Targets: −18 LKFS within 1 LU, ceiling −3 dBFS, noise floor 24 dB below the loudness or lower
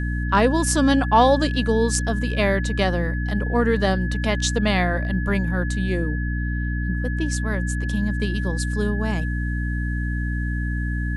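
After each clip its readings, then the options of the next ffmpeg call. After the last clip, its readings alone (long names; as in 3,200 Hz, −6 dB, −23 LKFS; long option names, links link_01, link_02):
mains hum 60 Hz; hum harmonics up to 300 Hz; level of the hum −22 dBFS; interfering tone 1,700 Hz; level of the tone −32 dBFS; integrated loudness −22.5 LKFS; sample peak −4.0 dBFS; target loudness −18.0 LKFS
→ -af "bandreject=frequency=60:width_type=h:width=4,bandreject=frequency=120:width_type=h:width=4,bandreject=frequency=180:width_type=h:width=4,bandreject=frequency=240:width_type=h:width=4,bandreject=frequency=300:width_type=h:width=4"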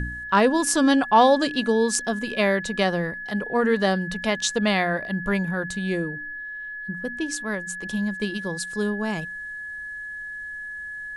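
mains hum none found; interfering tone 1,700 Hz; level of the tone −32 dBFS
→ -af "bandreject=frequency=1700:width=30"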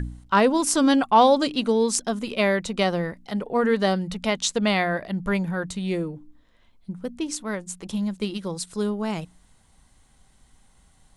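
interfering tone none found; integrated loudness −23.5 LKFS; sample peak −4.0 dBFS; target loudness −18.0 LKFS
→ -af "volume=5.5dB,alimiter=limit=-3dB:level=0:latency=1"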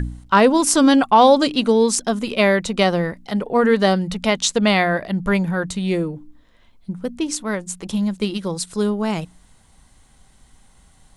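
integrated loudness −18.5 LKFS; sample peak −3.0 dBFS; background noise floor −53 dBFS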